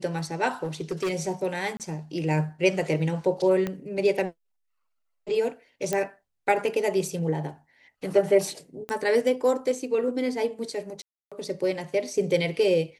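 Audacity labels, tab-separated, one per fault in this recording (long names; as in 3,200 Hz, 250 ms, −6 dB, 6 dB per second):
0.630000	1.120000	clipping −23.5 dBFS
1.770000	1.800000	drop-out 28 ms
3.670000	3.670000	click −16 dBFS
5.930000	5.930000	click −12 dBFS
8.890000	8.890000	click −18 dBFS
11.020000	11.320000	drop-out 296 ms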